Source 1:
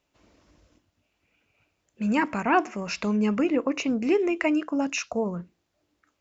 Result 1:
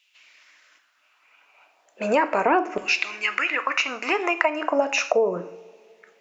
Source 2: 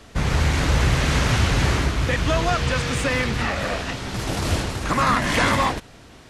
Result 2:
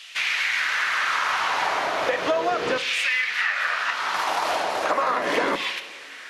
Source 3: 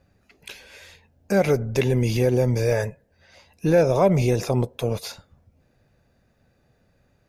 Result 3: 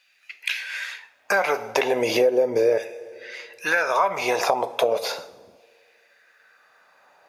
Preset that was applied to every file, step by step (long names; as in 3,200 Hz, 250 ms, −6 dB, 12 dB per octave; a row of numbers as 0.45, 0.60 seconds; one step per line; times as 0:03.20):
high-shelf EQ 3,500 Hz −7 dB
auto-filter high-pass saw down 0.36 Hz 360–2,900 Hz
coupled-rooms reverb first 0.48 s, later 2.6 s, from −26 dB, DRR 10 dB
dynamic equaliser 8,200 Hz, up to −5 dB, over −52 dBFS, Q 1.8
downward compressor 5 to 1, threshold −31 dBFS
loudness normalisation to −23 LKFS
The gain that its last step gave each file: +13.0, +9.5, +13.0 decibels